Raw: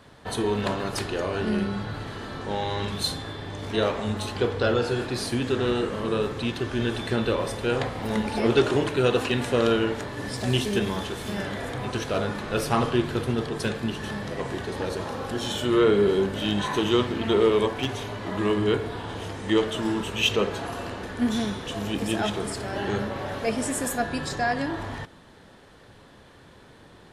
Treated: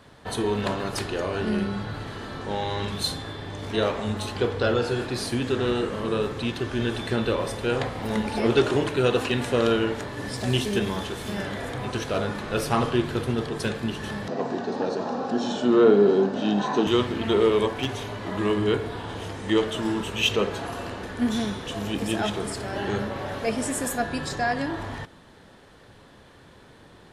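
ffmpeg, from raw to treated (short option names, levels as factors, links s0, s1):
-filter_complex "[0:a]asettb=1/sr,asplit=3[s0][s1][s2];[s0]atrim=end=14.284[s3];[s1]atrim=start=14.28:end=16.87,asetpts=PTS-STARTPTS,afade=t=in:d=0.004:c=qsin,afade=t=out:st=2.586:d=0.004:c=qsin,highpass=f=150:w=0.5412,highpass=f=150:w=1.3066,equalizer=f=240:t=q:w=4:g=9,equalizer=f=440:t=q:w=4:g=3,equalizer=f=730:t=q:w=4:g=9,equalizer=f=2100:t=q:w=4:g=-9,equalizer=f=3200:t=q:w=4:g=-7,lowpass=f=6300:w=0.5412,lowpass=f=6300:w=1.3066[s4];[s2]atrim=start=16.866[s5];[s3][s4]acrossfade=d=0.004:c1=hsin:c2=qsin[s6];[s6][s5]acrossfade=d=0.004:c1=qsin:c2=hsin"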